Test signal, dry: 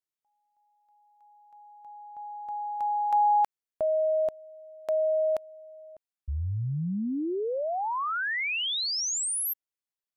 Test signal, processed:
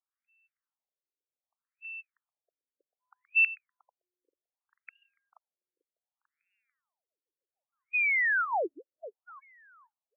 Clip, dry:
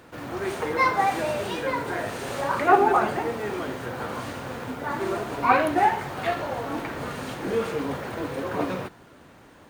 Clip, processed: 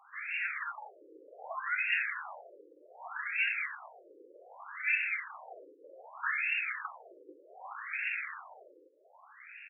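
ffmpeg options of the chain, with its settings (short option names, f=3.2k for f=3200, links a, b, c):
-filter_complex "[0:a]asplit=2[a][b];[b]acompressor=threshold=-32dB:ratio=6:attack=0.14:release=63:detection=rms,volume=-1.5dB[c];[a][c]amix=inputs=2:normalize=0,lowpass=f=3k:t=q:w=0.5098,lowpass=f=3k:t=q:w=0.6013,lowpass=f=3k:t=q:w=0.9,lowpass=f=3k:t=q:w=2.563,afreqshift=-3500,aecho=1:1:443|886|1329:0.266|0.0798|0.0239,afftfilt=real='re*between(b*sr/1024,380*pow(2000/380,0.5+0.5*sin(2*PI*0.65*pts/sr))/1.41,380*pow(2000/380,0.5+0.5*sin(2*PI*0.65*pts/sr))*1.41)':imag='im*between(b*sr/1024,380*pow(2000/380,0.5+0.5*sin(2*PI*0.65*pts/sr))/1.41,380*pow(2000/380,0.5+0.5*sin(2*PI*0.65*pts/sr))*1.41)':win_size=1024:overlap=0.75"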